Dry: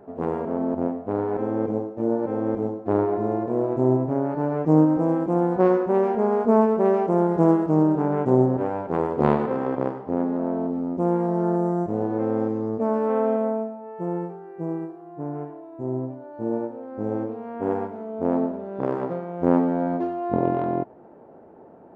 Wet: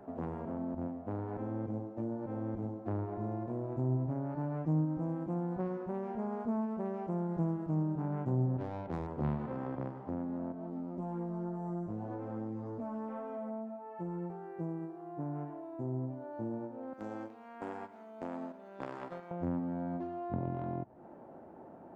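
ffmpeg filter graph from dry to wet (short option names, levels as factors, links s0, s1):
-filter_complex "[0:a]asettb=1/sr,asplit=3[s0][s1][s2];[s0]atrim=end=8.574[s3];[s1]atrim=start=8.57:end=9.07,asetpts=PTS-STARTPTS,afade=t=in:d=0.004:c=qsin,afade=t=out:st=0.496:d=0.004:c=qsin,lowpass=2100,adynamicsmooth=sensitivity=3:basefreq=920[s4];[s2]atrim=start=9.066[s5];[s3][s4]acrossfade=d=0.004:c1=hsin:c2=qsin[s6];[s6][s5]acrossfade=d=0.004:c1=qsin:c2=hsin,asettb=1/sr,asplit=3[s7][s8][s9];[s7]atrim=end=10.524[s10];[s8]atrim=start=10.52:end=14.3,asetpts=PTS-STARTPTS,afade=t=in:d=0.004:c=qsin,afade=t=out:st=3.776:d=0.004:c=qsin,acompressor=threshold=0.0501:ratio=2.5:attack=3.2:release=140:knee=1:detection=peak,flanger=delay=16:depth=2.1:speed=1.8[s11];[s9]atrim=start=14.296[s12];[s10][s11]acrossfade=d=0.004:c1=hsin:c2=qsin[s13];[s13][s12]acrossfade=d=0.004:c1=qsin:c2=hsin,asettb=1/sr,asplit=3[s14][s15][s16];[s14]atrim=end=16.934[s17];[s15]atrim=start=16.93:end=19.31,asetpts=PTS-STARTPTS,afade=t=in:d=0.004:c=qsin,afade=t=out:st=2.376:d=0.004:c=qsin,highpass=160,agate=range=0.447:threshold=0.0316:ratio=16:release=100:detection=peak,tiltshelf=f=1200:g=-9[s18];[s16]atrim=start=19.306[s19];[s17][s18]acrossfade=d=0.004:c1=hsin:c2=qsin[s20];[s20][s19]acrossfade=d=0.004:c1=qsin:c2=hsin,equalizer=f=440:w=5.3:g=-8.5,acrossover=split=150[s21][s22];[s22]acompressor=threshold=0.0158:ratio=5[s23];[s21][s23]amix=inputs=2:normalize=0,volume=0.75"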